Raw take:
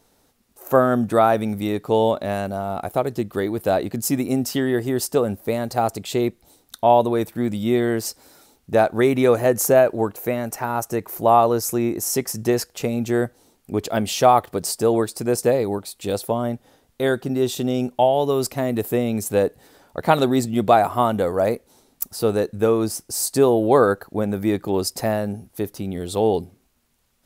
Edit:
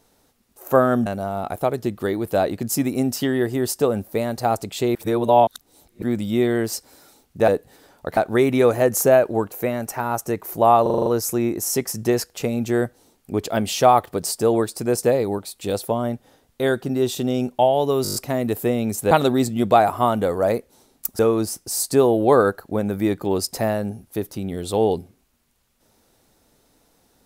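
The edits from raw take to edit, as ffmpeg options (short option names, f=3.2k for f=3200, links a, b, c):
-filter_complex "[0:a]asplit=20[a][b][c][d][e][f][g][h][i][j][k][l][m][n][o][p][q][r][s][t];[a]atrim=end=1.062[u];[b]atrim=start=2.388:end=6.282[v];[c]atrim=start=6.278:end=7.352,asetpts=PTS-STARTPTS,areverse[w];[d]atrim=start=7.348:end=8.812[x];[e]atrim=start=19.388:end=20.082[y];[f]atrim=start=8.808:end=11.502[z];[g]atrim=start=11.458:end=11.502[aa];[h]atrim=start=11.458:end=11.502[ab];[i]atrim=start=11.458:end=11.502[ac];[j]atrim=start=11.458:end=11.502[ad];[k]atrim=start=11.458:end=11.502[ae];[l]atrim=start=11.458:end=18.452[af];[m]atrim=start=18.428:end=18.452[ag];[n]atrim=start=18.428:end=18.452[ah];[o]atrim=start=18.428:end=18.452[ai];[p]atrim=start=18.428:end=18.452[aj];[q]atrim=start=18.428:end=18.452[ak];[r]atrim=start=18.428:end=19.392[al];[s]atrim=start=20.078:end=22.162[am];[t]atrim=start=22.618[an];[u][v]acrossfade=d=0.004:c1=hsin:c2=hsin[ao];[ao][w]acrossfade=d=0.004:c1=hsin:c2=hsin[ap];[ap][x]acrossfade=d=0.004:c1=hsin:c2=hsin[aq];[aq][y]acrossfade=d=0.004:c1=hsin:c2=hsin[ar];[ar][z]acrossfade=d=0.004:c1=hsin:c2=hsin[as];[as][aa]acrossfade=d=0.004:c1=hsin:c2=hsin[at];[at][ab]acrossfade=d=0.004:c1=hsin:c2=hsin[au];[au][ac]acrossfade=d=0.004:c1=hsin:c2=hsin[av];[av][ad]acrossfade=d=0.004:c1=hsin:c2=hsin[aw];[aw][ae]acrossfade=d=0.004:c1=hsin:c2=hsin[ax];[ax][af]acrossfade=d=0.004:c1=hsin:c2=hsin[ay];[ay][ag]acrossfade=d=0.004:c1=hsin:c2=hsin[az];[az][ah]acrossfade=d=0.004:c1=hsin:c2=hsin[ba];[ba][ai]acrossfade=d=0.004:c1=hsin:c2=hsin[bb];[bb][aj]acrossfade=d=0.004:c1=hsin:c2=hsin[bc];[bc][ak]acrossfade=d=0.004:c1=hsin:c2=hsin[bd];[bd][al]acrossfade=d=0.004:c1=hsin:c2=hsin[be];[be][am]acrossfade=d=0.004:c1=hsin:c2=hsin[bf];[bf][an]acrossfade=d=0.004:c1=hsin:c2=hsin"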